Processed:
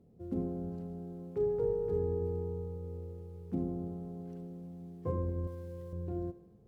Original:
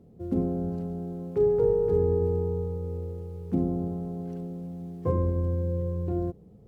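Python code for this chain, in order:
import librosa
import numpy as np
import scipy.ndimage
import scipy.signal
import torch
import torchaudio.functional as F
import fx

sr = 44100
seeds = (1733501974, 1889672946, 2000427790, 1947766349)

p1 = fx.tilt_shelf(x, sr, db=-8.0, hz=970.0, at=(5.47, 5.93))
p2 = p1 + fx.echo_thinned(p1, sr, ms=78, feedback_pct=69, hz=420.0, wet_db=-14.5, dry=0)
y = p2 * librosa.db_to_amplitude(-8.5)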